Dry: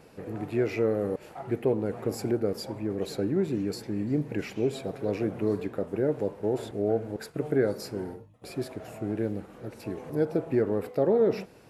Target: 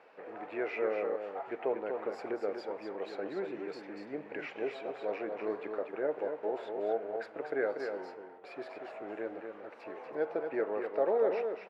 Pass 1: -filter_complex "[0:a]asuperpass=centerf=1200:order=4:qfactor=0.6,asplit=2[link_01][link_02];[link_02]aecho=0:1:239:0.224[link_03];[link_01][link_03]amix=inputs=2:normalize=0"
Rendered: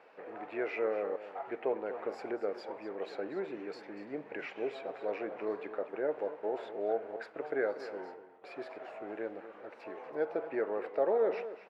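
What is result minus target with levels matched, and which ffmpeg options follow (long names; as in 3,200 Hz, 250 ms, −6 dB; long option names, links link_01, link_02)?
echo-to-direct −7 dB
-filter_complex "[0:a]asuperpass=centerf=1200:order=4:qfactor=0.6,asplit=2[link_01][link_02];[link_02]aecho=0:1:239:0.501[link_03];[link_01][link_03]amix=inputs=2:normalize=0"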